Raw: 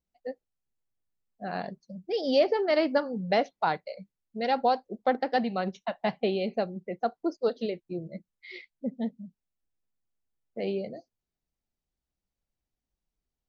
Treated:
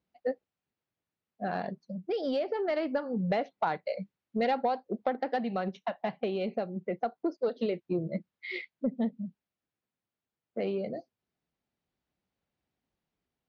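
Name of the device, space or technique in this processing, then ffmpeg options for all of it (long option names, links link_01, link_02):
AM radio: -af "highpass=110,lowpass=3400,acompressor=threshold=-32dB:ratio=6,asoftclip=type=tanh:threshold=-23dB,tremolo=f=0.24:d=0.34,volume=7.5dB"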